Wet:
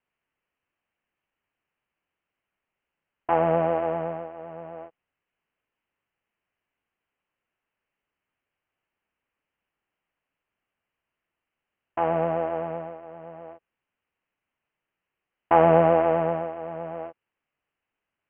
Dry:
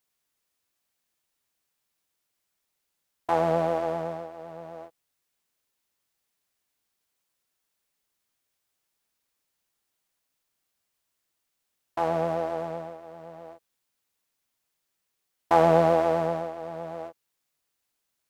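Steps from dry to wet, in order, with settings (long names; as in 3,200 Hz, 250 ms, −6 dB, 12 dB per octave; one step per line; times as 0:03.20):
Butterworth low-pass 3,000 Hz 96 dB per octave
level +2 dB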